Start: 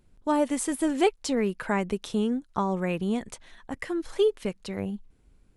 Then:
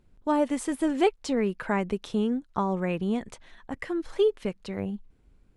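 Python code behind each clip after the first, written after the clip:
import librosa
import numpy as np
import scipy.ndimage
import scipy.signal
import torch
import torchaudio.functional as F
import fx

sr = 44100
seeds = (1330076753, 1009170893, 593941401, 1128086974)

y = fx.lowpass(x, sr, hz=3900.0, slope=6)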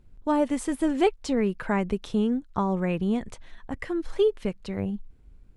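y = fx.low_shelf(x, sr, hz=120.0, db=9.5)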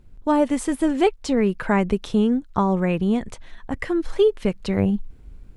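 y = fx.rider(x, sr, range_db=4, speed_s=0.5)
y = y * librosa.db_to_amplitude(5.5)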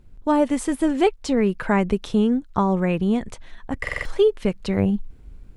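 y = fx.buffer_glitch(x, sr, at_s=(3.82,), block=2048, repeats=4)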